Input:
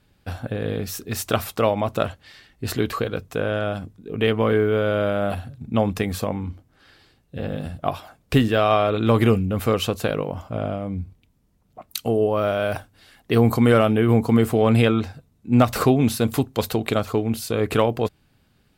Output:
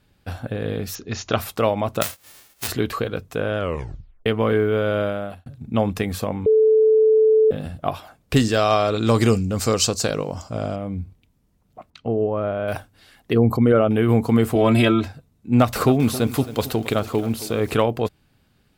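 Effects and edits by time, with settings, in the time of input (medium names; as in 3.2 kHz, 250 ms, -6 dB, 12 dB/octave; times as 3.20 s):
0.95–1.38 s: brick-wall FIR low-pass 7.2 kHz
2.01–2.67 s: formants flattened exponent 0.1
3.58 s: tape stop 0.68 s
5.00–5.46 s: fade out
6.46–7.51 s: bleep 437 Hz -11.5 dBFS
8.36–10.76 s: high-order bell 6 kHz +16 dB 1.2 oct
11.90–12.68 s: tape spacing loss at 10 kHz 39 dB
13.33–13.91 s: resonances exaggerated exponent 1.5
14.55–15.08 s: comb 3.1 ms, depth 93%
15.58–17.71 s: bit-crushed delay 269 ms, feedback 55%, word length 6-bit, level -14.5 dB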